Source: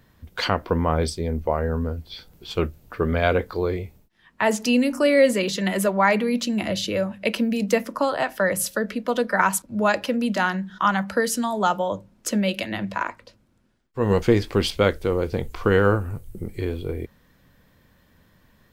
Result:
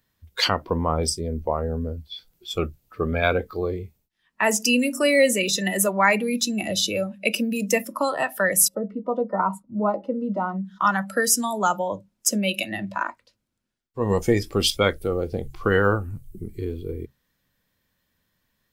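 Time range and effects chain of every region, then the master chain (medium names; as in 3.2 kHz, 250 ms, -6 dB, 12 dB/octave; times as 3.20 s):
8.68–10.65 s: Savitzky-Golay filter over 65 samples + doubling 15 ms -10.5 dB
whole clip: treble shelf 2.1 kHz +11.5 dB; de-hum 67.16 Hz, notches 2; spectral noise reduction 15 dB; trim -2.5 dB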